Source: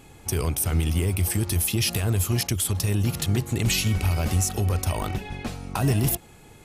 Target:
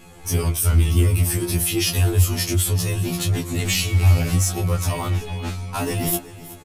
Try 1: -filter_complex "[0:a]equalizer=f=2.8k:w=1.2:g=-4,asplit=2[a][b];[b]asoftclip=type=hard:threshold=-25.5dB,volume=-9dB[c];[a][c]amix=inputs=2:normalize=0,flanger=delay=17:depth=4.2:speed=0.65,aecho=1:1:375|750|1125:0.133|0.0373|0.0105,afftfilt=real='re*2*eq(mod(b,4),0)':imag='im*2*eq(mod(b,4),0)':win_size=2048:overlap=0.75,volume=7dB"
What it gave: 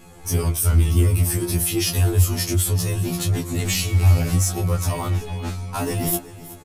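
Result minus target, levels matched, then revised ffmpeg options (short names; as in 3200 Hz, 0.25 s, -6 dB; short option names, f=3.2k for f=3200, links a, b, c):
2000 Hz band -2.5 dB
-filter_complex "[0:a]asplit=2[a][b];[b]asoftclip=type=hard:threshold=-25.5dB,volume=-9dB[c];[a][c]amix=inputs=2:normalize=0,flanger=delay=17:depth=4.2:speed=0.65,aecho=1:1:375|750|1125:0.133|0.0373|0.0105,afftfilt=real='re*2*eq(mod(b,4),0)':imag='im*2*eq(mod(b,4),0)':win_size=2048:overlap=0.75,volume=7dB"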